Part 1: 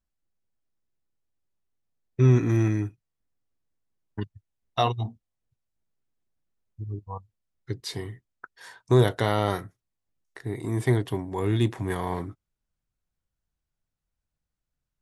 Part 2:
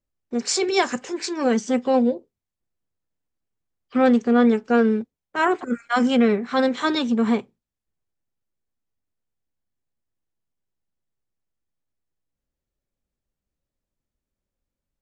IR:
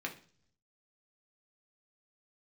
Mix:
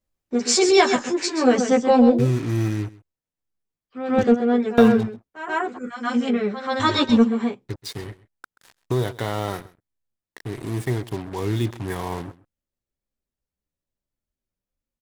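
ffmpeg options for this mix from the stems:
-filter_complex "[0:a]alimiter=limit=-13dB:level=0:latency=1:release=343,acrusher=bits=5:mix=0:aa=0.5,volume=-6dB,asplit=3[link_01][link_02][link_03];[link_02]volume=-20dB[link_04];[1:a]asplit=2[link_05][link_06];[link_06]adelay=11.1,afreqshift=1.7[link_07];[link_05][link_07]amix=inputs=2:normalize=1,volume=0.5dB,asplit=2[link_08][link_09];[link_09]volume=-8.5dB[link_10];[link_03]apad=whole_len=662574[link_11];[link_08][link_11]sidechaingate=range=-18dB:threshold=-47dB:ratio=16:detection=peak[link_12];[link_04][link_10]amix=inputs=2:normalize=0,aecho=0:1:131:1[link_13];[link_01][link_12][link_13]amix=inputs=3:normalize=0,acontrast=66"

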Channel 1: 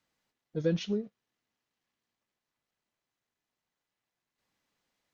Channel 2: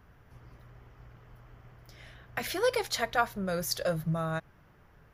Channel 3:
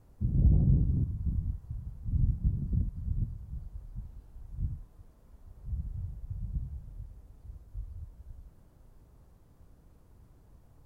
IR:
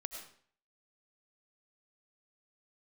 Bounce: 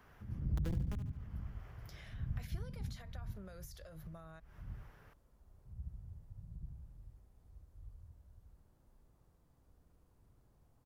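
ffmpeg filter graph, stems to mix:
-filter_complex "[0:a]acrusher=bits=3:mix=0:aa=0.000001,volume=-6dB,asplit=2[link_01][link_02];[link_02]volume=-11dB[link_03];[1:a]acompressor=threshold=-38dB:ratio=4,alimiter=level_in=11dB:limit=-24dB:level=0:latency=1:release=26,volume=-11dB,volume=0.5dB[link_04];[2:a]volume=-9dB,asplit=2[link_05][link_06];[link_06]volume=-4dB[link_07];[link_04][link_05]amix=inputs=2:normalize=0,lowshelf=frequency=280:gain=-8,acompressor=threshold=-49dB:ratio=2.5,volume=0dB[link_08];[link_03][link_07]amix=inputs=2:normalize=0,aecho=0:1:72|144|216|288:1|0.31|0.0961|0.0298[link_09];[link_01][link_08][link_09]amix=inputs=3:normalize=0,acrossover=split=260[link_10][link_11];[link_11]acompressor=threshold=-54dB:ratio=4[link_12];[link_10][link_12]amix=inputs=2:normalize=0"

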